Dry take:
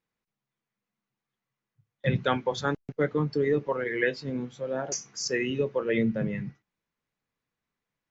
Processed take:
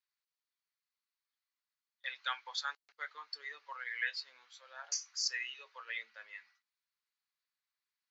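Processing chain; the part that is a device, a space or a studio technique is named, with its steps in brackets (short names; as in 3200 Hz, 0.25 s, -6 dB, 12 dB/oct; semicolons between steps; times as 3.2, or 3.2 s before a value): headphones lying on a table (HPF 1100 Hz 24 dB/oct; bell 4400 Hz +10.5 dB 0.45 oct); gain -6.5 dB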